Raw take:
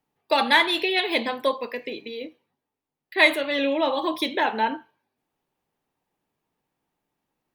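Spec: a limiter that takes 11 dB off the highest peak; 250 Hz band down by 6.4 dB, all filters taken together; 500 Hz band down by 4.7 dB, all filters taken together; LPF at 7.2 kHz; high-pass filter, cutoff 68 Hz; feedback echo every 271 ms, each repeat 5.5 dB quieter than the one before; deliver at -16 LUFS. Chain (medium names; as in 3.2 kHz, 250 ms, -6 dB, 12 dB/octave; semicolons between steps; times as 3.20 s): high-pass 68 Hz; low-pass 7.2 kHz; peaking EQ 250 Hz -6.5 dB; peaking EQ 500 Hz -4.5 dB; peak limiter -15 dBFS; feedback delay 271 ms, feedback 53%, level -5.5 dB; trim +10.5 dB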